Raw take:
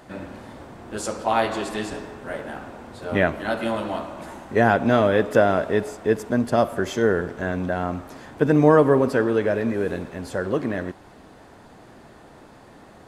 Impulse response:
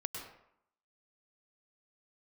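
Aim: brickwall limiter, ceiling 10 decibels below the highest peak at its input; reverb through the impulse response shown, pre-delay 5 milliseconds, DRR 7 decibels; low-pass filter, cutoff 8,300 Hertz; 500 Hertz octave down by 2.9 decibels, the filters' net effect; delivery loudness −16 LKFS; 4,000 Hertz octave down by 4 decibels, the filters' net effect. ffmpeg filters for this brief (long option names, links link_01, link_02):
-filter_complex "[0:a]lowpass=8300,equalizer=frequency=500:width_type=o:gain=-3.5,equalizer=frequency=4000:width_type=o:gain=-5,alimiter=limit=-14.5dB:level=0:latency=1,asplit=2[link_01][link_02];[1:a]atrim=start_sample=2205,adelay=5[link_03];[link_02][link_03]afir=irnorm=-1:irlink=0,volume=-7.5dB[link_04];[link_01][link_04]amix=inputs=2:normalize=0,volume=10.5dB"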